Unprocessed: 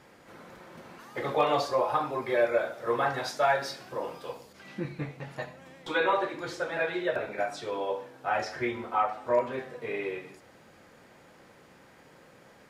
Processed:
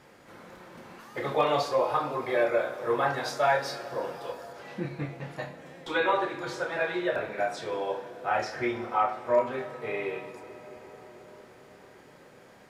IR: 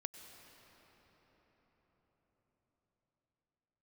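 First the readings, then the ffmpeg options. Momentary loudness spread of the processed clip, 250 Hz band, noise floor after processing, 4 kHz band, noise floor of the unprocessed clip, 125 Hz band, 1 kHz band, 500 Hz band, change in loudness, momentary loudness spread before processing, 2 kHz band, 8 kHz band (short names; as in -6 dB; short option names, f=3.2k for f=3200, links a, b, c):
20 LU, +1.0 dB, -54 dBFS, +0.5 dB, -56 dBFS, +1.5 dB, +1.0 dB, +1.0 dB, +1.0 dB, 16 LU, +0.5 dB, +0.5 dB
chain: -filter_complex "[0:a]asplit=2[a][b];[1:a]atrim=start_sample=2205,asetrate=31311,aresample=44100,adelay=28[c];[b][c]afir=irnorm=-1:irlink=0,volume=-6dB[d];[a][d]amix=inputs=2:normalize=0"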